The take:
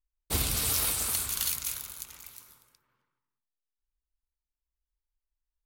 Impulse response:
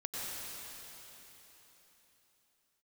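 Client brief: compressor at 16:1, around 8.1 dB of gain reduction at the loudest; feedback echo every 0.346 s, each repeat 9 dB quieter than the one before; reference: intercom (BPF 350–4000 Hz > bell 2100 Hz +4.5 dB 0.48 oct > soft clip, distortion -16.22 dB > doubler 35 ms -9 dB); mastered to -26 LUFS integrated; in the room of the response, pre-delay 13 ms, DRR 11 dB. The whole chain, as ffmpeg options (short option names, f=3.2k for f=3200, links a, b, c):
-filter_complex "[0:a]acompressor=threshold=-32dB:ratio=16,aecho=1:1:346|692|1038|1384:0.355|0.124|0.0435|0.0152,asplit=2[a][b];[1:a]atrim=start_sample=2205,adelay=13[c];[b][c]afir=irnorm=-1:irlink=0,volume=-14dB[d];[a][d]amix=inputs=2:normalize=0,highpass=350,lowpass=4k,equalizer=f=2.1k:t=o:w=0.48:g=4.5,asoftclip=threshold=-36.5dB,asplit=2[e][f];[f]adelay=35,volume=-9dB[g];[e][g]amix=inputs=2:normalize=0,volume=18.5dB"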